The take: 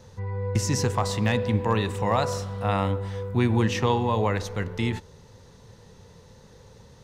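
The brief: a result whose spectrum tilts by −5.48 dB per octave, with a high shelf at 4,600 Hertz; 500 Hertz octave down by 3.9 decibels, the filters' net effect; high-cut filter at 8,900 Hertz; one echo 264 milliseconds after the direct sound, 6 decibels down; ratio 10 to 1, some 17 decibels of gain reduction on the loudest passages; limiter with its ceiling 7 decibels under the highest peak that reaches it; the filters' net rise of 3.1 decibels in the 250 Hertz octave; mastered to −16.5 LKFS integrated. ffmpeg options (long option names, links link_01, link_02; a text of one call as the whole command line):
ffmpeg -i in.wav -af "lowpass=8900,equalizer=frequency=250:width_type=o:gain=5,equalizer=frequency=500:width_type=o:gain=-6,highshelf=frequency=4600:gain=4,acompressor=threshold=-34dB:ratio=10,alimiter=level_in=5.5dB:limit=-24dB:level=0:latency=1,volume=-5.5dB,aecho=1:1:264:0.501,volume=22.5dB" out.wav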